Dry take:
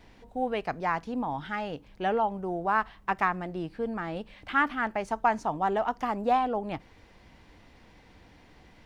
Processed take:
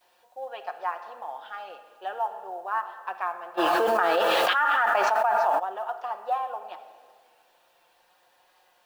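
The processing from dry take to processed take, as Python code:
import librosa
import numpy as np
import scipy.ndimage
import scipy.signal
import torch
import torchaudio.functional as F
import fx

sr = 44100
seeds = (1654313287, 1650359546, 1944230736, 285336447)

y = scipy.signal.sosfilt(scipy.signal.butter(2, 4900.0, 'lowpass', fs=sr, output='sos'), x)
y = fx.env_lowpass_down(y, sr, base_hz=2800.0, full_db=-22.5)
y = scipy.signal.sosfilt(scipy.signal.butter(4, 560.0, 'highpass', fs=sr, output='sos'), y)
y = fx.peak_eq(y, sr, hz=2100.0, db=-15.0, octaves=0.23)
y = y + 0.36 * np.pad(y, (int(5.7 * sr / 1000.0), 0))[:len(y)]
y = fx.vibrato(y, sr, rate_hz=0.5, depth_cents=48.0)
y = fx.quant_companded(y, sr, bits=8)
y = fx.wow_flutter(y, sr, seeds[0], rate_hz=2.1, depth_cents=23.0)
y = fx.dmg_noise_colour(y, sr, seeds[1], colour='white', level_db=-70.0)
y = fx.room_shoebox(y, sr, seeds[2], volume_m3=2400.0, walls='mixed', distance_m=0.97)
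y = fx.env_flatten(y, sr, amount_pct=100, at=(3.57, 5.58), fade=0.02)
y = y * librosa.db_to_amplitude(-3.5)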